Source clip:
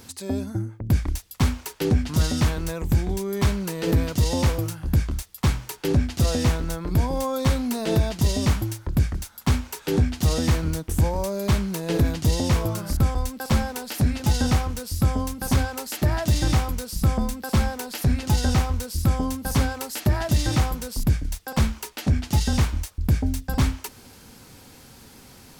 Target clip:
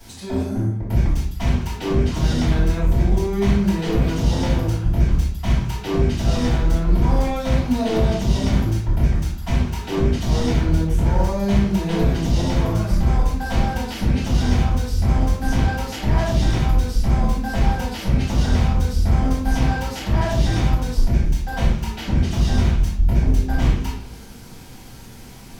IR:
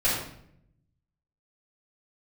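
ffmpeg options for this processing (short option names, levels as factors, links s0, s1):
-filter_complex "[0:a]acrossover=split=160|5700[s0][s1][s2];[s2]acompressor=threshold=0.00398:ratio=6[s3];[s0][s1][s3]amix=inputs=3:normalize=0,volume=14.1,asoftclip=hard,volume=0.0708[s4];[1:a]atrim=start_sample=2205,asetrate=57330,aresample=44100[s5];[s4][s5]afir=irnorm=-1:irlink=0,volume=0.531"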